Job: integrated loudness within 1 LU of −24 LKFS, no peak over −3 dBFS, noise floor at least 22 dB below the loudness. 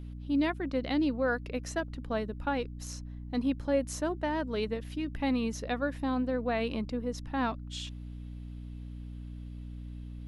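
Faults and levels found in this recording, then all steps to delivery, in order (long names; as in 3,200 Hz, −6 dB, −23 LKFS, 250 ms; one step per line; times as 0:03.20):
mains hum 60 Hz; hum harmonics up to 300 Hz; level of the hum −39 dBFS; integrated loudness −32.5 LKFS; sample peak −16.5 dBFS; target loudness −24.0 LKFS
→ mains-hum notches 60/120/180/240/300 Hz
level +8.5 dB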